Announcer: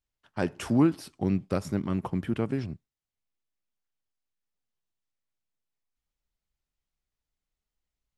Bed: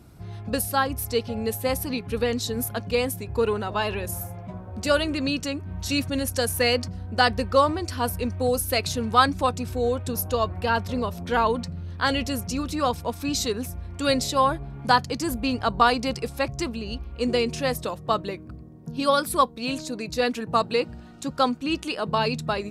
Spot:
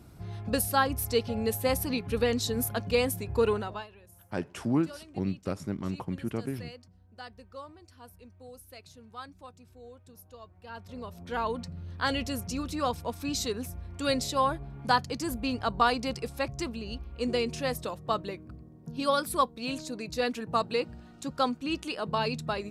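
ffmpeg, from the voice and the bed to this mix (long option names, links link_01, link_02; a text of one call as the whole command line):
ffmpeg -i stem1.wav -i stem2.wav -filter_complex "[0:a]adelay=3950,volume=-4.5dB[link_01];[1:a]volume=17.5dB,afade=type=out:start_time=3.51:duration=0.36:silence=0.0707946,afade=type=in:start_time=10.61:duration=1.33:silence=0.105925[link_02];[link_01][link_02]amix=inputs=2:normalize=0" out.wav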